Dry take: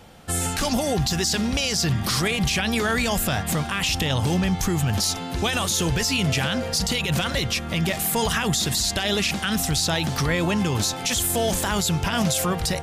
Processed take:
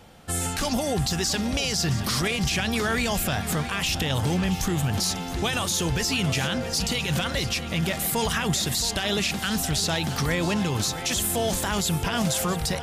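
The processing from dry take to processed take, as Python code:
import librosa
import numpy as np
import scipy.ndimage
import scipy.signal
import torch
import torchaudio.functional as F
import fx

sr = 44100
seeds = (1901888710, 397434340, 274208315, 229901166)

y = fx.echo_feedback(x, sr, ms=671, feedback_pct=45, wet_db=-13)
y = y * librosa.db_to_amplitude(-2.5)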